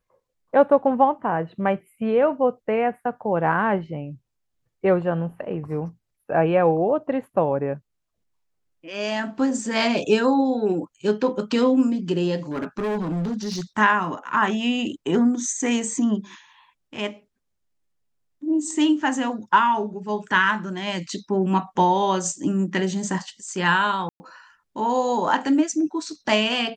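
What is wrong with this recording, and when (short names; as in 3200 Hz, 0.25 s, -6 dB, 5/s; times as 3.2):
12.51–13.61 clipped -22.5 dBFS
24.09–24.2 gap 0.11 s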